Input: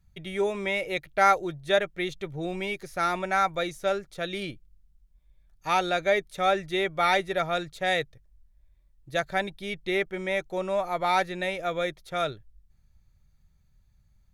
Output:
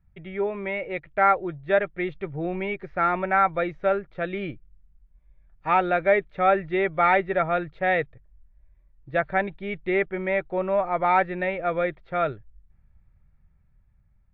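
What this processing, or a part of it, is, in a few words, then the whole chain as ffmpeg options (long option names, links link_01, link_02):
action camera in a waterproof case: -af "lowpass=frequency=2300:width=0.5412,lowpass=frequency=2300:width=1.3066,dynaudnorm=framelen=670:gausssize=5:maxgain=4dB" -ar 22050 -c:a aac -b:a 64k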